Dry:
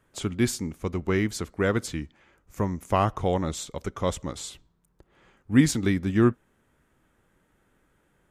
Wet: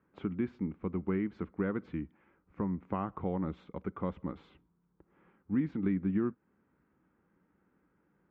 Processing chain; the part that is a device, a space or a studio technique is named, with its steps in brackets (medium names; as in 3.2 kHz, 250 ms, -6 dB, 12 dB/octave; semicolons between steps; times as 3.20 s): bass amplifier (compression 3:1, threshold -26 dBFS, peak gain reduction 10.5 dB; cabinet simulation 73–2100 Hz, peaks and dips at 110 Hz -8 dB, 190 Hz +7 dB, 300 Hz +4 dB, 640 Hz -6 dB, 1.8 kHz -5 dB); trim -5.5 dB